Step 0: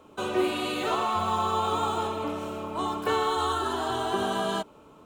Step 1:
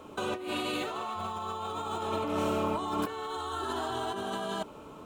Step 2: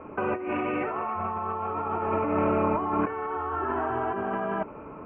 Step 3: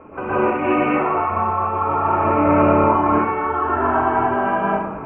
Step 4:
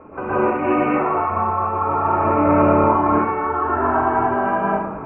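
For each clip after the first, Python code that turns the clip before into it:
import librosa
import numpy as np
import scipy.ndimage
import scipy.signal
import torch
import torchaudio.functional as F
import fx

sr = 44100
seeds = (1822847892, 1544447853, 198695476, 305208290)

y1 = fx.over_compress(x, sr, threshold_db=-34.0, ratio=-1.0)
y2 = scipy.signal.sosfilt(scipy.signal.butter(12, 2500.0, 'lowpass', fs=sr, output='sos'), y1)
y2 = F.gain(torch.from_numpy(y2), 5.5).numpy()
y3 = fx.rev_plate(y2, sr, seeds[0], rt60_s=0.83, hf_ratio=0.7, predelay_ms=110, drr_db=-10.0)
y4 = scipy.signal.sosfilt(scipy.signal.butter(2, 2200.0, 'lowpass', fs=sr, output='sos'), y3)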